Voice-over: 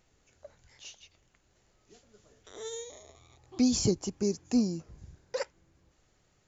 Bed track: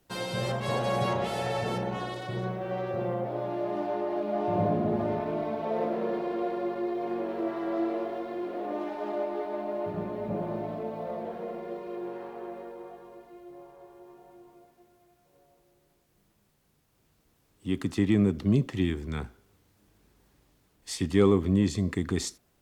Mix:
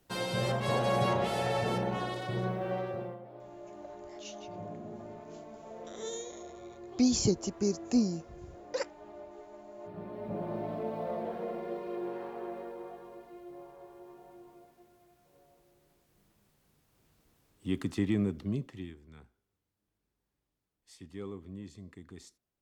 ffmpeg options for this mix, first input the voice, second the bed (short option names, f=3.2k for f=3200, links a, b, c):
-filter_complex "[0:a]adelay=3400,volume=-0.5dB[a];[1:a]volume=15.5dB,afade=t=out:st=2.68:d=0.51:silence=0.158489,afade=t=in:st=9.74:d=1.18:silence=0.158489,afade=t=out:st=17.26:d=1.72:silence=0.1[b];[a][b]amix=inputs=2:normalize=0"